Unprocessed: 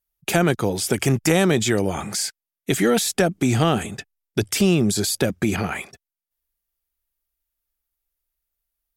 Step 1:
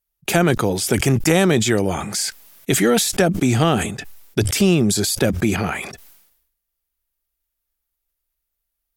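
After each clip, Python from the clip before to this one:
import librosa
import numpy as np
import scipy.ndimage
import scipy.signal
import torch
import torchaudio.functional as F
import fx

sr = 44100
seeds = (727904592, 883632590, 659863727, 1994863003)

y = fx.sustainer(x, sr, db_per_s=64.0)
y = y * 10.0 ** (2.0 / 20.0)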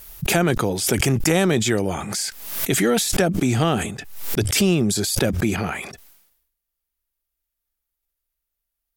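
y = fx.pre_swell(x, sr, db_per_s=63.0)
y = y * 10.0 ** (-3.0 / 20.0)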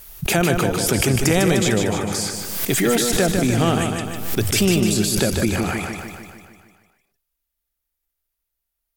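y = fx.echo_feedback(x, sr, ms=151, feedback_pct=59, wet_db=-5.5)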